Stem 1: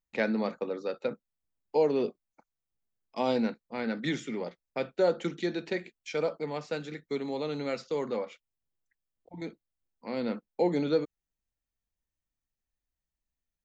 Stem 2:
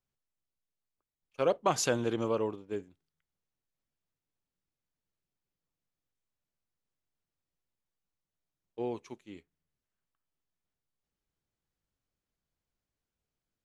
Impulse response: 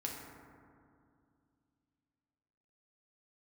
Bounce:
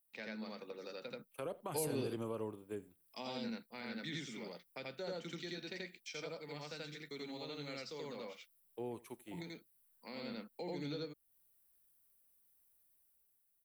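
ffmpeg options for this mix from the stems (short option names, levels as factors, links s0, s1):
-filter_complex "[0:a]crystalizer=i=8:c=0,volume=0.398,asplit=2[s0][s1];[s1]volume=0.355[s2];[1:a]bass=f=250:g=-7,treble=f=4000:g=-3,alimiter=limit=0.0708:level=0:latency=1:release=32,aexciter=amount=7.1:drive=9.9:freq=8100,volume=0.596,asplit=3[s3][s4][s5];[s4]volume=0.0708[s6];[s5]apad=whole_len=601864[s7];[s0][s7]sidechaingate=range=0.316:threshold=0.00141:ratio=16:detection=peak[s8];[s2][s6]amix=inputs=2:normalize=0,aecho=0:1:83:1[s9];[s8][s3][s9]amix=inputs=3:normalize=0,dynaudnorm=f=130:g=11:m=1.88,equalizer=f=6900:w=7:g=-13,acrossover=split=210[s10][s11];[s11]acompressor=threshold=0.00316:ratio=2[s12];[s10][s12]amix=inputs=2:normalize=0"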